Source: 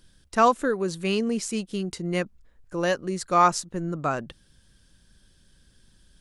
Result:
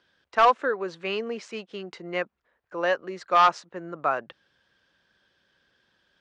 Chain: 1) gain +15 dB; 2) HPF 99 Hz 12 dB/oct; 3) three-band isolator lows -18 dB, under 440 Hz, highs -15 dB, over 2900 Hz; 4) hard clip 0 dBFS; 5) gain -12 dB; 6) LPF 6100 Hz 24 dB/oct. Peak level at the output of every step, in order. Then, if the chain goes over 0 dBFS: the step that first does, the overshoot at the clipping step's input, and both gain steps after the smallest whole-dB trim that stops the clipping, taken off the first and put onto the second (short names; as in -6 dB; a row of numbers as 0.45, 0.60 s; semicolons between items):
+8.0, +8.5, +7.5, 0.0, -12.0, -11.0 dBFS; step 1, 7.5 dB; step 1 +7 dB, step 5 -4 dB